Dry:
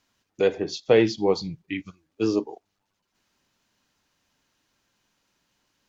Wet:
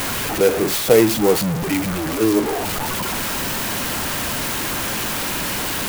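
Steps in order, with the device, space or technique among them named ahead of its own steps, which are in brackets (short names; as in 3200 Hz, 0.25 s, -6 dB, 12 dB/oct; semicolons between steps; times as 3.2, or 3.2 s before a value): early CD player with a faulty converter (zero-crossing step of -20 dBFS; clock jitter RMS 0.053 ms); gain +3 dB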